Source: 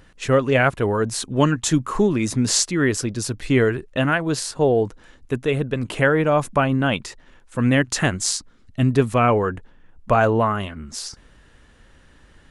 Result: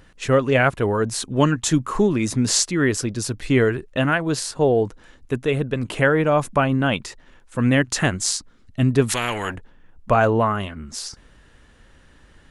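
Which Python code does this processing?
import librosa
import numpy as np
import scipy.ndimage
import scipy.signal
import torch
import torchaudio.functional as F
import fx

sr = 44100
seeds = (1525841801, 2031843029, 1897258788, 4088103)

y = fx.spectral_comp(x, sr, ratio=4.0, at=(9.08, 9.54), fade=0.02)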